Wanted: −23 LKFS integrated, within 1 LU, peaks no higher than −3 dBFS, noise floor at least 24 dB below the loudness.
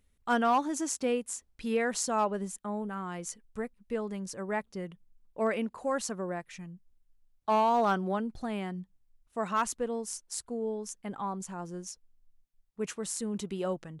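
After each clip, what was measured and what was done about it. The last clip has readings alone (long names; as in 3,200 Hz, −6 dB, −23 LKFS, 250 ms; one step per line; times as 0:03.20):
share of clipped samples 0.3%; peaks flattened at −19.5 dBFS; integrated loudness −32.5 LKFS; sample peak −19.5 dBFS; target loudness −23.0 LKFS
→ clipped peaks rebuilt −19.5 dBFS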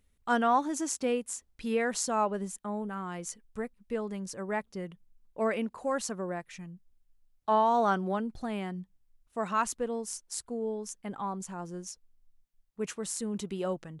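share of clipped samples 0.0%; integrated loudness −32.5 LKFS; sample peak −15.0 dBFS; target loudness −23.0 LKFS
→ level +9.5 dB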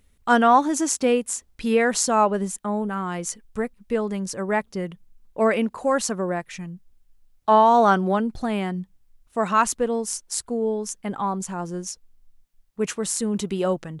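integrated loudness −23.0 LKFS; sample peak −5.5 dBFS; background noise floor −62 dBFS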